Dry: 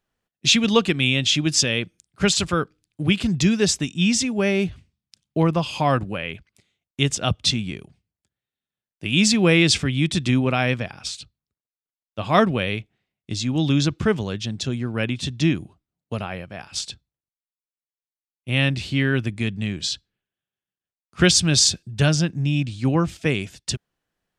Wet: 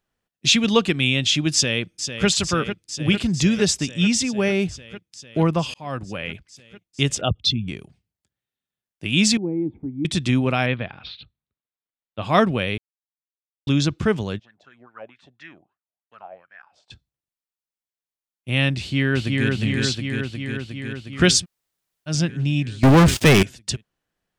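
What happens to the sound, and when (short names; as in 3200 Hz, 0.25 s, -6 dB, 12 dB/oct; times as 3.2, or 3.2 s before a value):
1.53–2.27 echo throw 0.45 s, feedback 80%, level -9 dB
5.74–6.28 fade in
7.21–7.68 formant sharpening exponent 2
9.37–10.05 vocal tract filter u
10.66–12.22 elliptic low-pass 3900 Hz, stop band 50 dB
12.78–13.67 mute
14.38–16.9 wah 5.6 Hz -> 1.8 Hz 610–1800 Hz, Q 6.5
18.79–19.5 echo throw 0.36 s, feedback 75%, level -2 dB
21.41–22.11 room tone, crossfade 0.10 s
22.83–23.43 sample leveller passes 5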